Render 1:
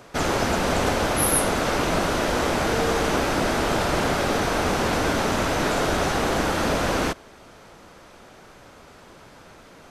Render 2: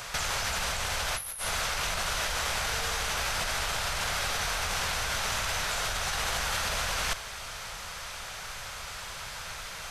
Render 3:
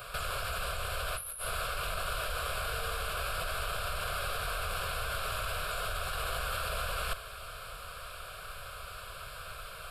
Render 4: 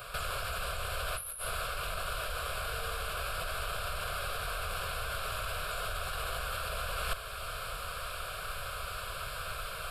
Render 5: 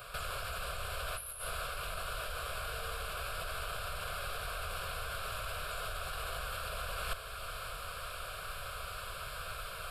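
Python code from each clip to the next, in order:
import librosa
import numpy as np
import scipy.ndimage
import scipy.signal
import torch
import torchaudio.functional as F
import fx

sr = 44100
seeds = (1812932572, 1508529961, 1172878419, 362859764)

y1 = fx.tone_stack(x, sr, knobs='10-0-10')
y1 = fx.over_compress(y1, sr, threshold_db=-39.0, ratio=-1.0)
y1 = F.gain(torch.from_numpy(y1), 8.0).numpy()
y2 = fx.peak_eq(y1, sr, hz=3400.0, db=-7.0, octaves=0.86)
y2 = fx.fixed_phaser(y2, sr, hz=1300.0, stages=8)
y3 = fx.rider(y2, sr, range_db=5, speed_s=0.5)
y4 = y3 + 10.0 ** (-14.0 / 20.0) * np.pad(y3, (int(554 * sr / 1000.0), 0))[:len(y3)]
y4 = F.gain(torch.from_numpy(y4), -3.5).numpy()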